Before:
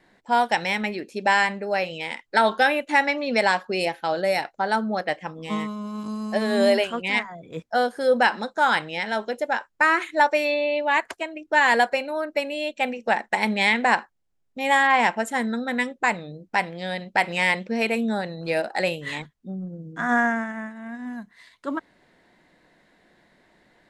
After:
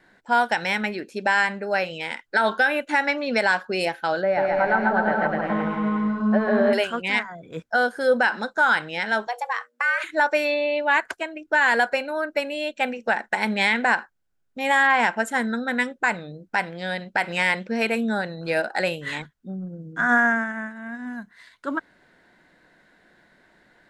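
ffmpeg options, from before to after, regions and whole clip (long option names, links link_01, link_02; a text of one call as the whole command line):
ffmpeg -i in.wav -filter_complex "[0:a]asettb=1/sr,asplit=3[link_01][link_02][link_03];[link_01]atrim=end=4.234[link_04];[link_02]atrim=start=4.23:end=6.73,asetpts=PTS-STARTPTS,afade=type=in:duration=0.004:curve=qsin,afade=type=out:start_time=2.496:duration=0.004:curve=qsin,aeval=exprs='val(0)+0.5*0.0168*sgn(val(0))':channel_layout=same,lowpass=1500,aecho=1:1:140|252|341.6|413.3|470.6|516.5:0.794|0.631|0.501|0.398|0.316|0.251,atrim=end_sample=110250[link_05];[link_03]atrim=start=6.726[link_06];[link_04][link_05]acrossfade=duration=0.004:curve1=hsin:curve2=qsin[link_07];[link_07][link_06]acrossfade=duration=0.004:curve1=qsin:curve2=hsin,asettb=1/sr,asplit=3[link_08][link_09][link_10];[link_08]atrim=end=9.274[link_11];[link_09]atrim=start=9.27:end=10.04,asetpts=PTS-STARTPTS,afade=type=in:duration=0.004:curve=qsin,afade=type=out:start_time=0.766:duration=0.004:curve=qsin,bandreject=frequency=60:width_type=h:width=6,bandreject=frequency=120:width_type=h:width=6,bandreject=frequency=180:width_type=h:width=6,bandreject=frequency=240:width_type=h:width=6,bandreject=frequency=300:width_type=h:width=6,bandreject=frequency=360:width_type=h:width=6,acompressor=threshold=-22dB:ratio=12:attack=3.2:release=140:knee=1:detection=peak,afreqshift=240[link_12];[link_10]atrim=start=10.036[link_13];[link_11][link_12]acrossfade=duration=0.004:curve1=hsin:curve2=qsin[link_14];[link_14][link_13]acrossfade=duration=0.004:curve1=qsin:curve2=hsin,equalizer=frequency=1500:width=5.2:gain=10,alimiter=limit=-9.5dB:level=0:latency=1:release=107" out.wav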